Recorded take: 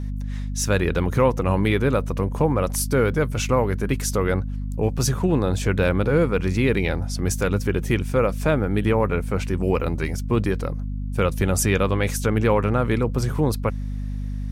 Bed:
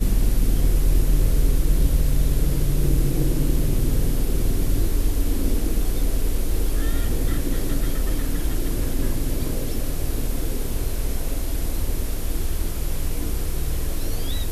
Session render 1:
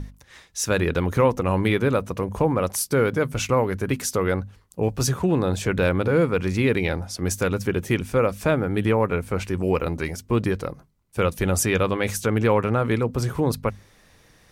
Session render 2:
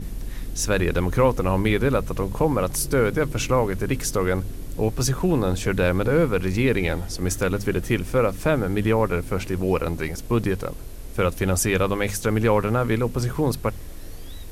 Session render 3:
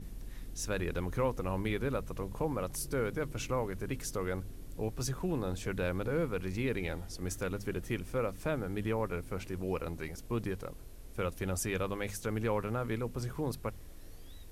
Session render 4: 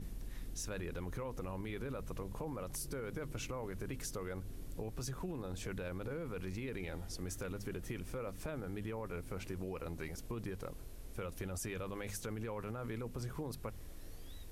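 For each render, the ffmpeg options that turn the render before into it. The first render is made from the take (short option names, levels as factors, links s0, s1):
-af "bandreject=f=50:t=h:w=6,bandreject=f=100:t=h:w=6,bandreject=f=150:t=h:w=6,bandreject=f=200:t=h:w=6,bandreject=f=250:t=h:w=6"
-filter_complex "[1:a]volume=0.237[s0];[0:a][s0]amix=inputs=2:normalize=0"
-af "volume=0.224"
-af "alimiter=level_in=1.68:limit=0.0631:level=0:latency=1:release=13,volume=0.596,acompressor=threshold=0.0126:ratio=6"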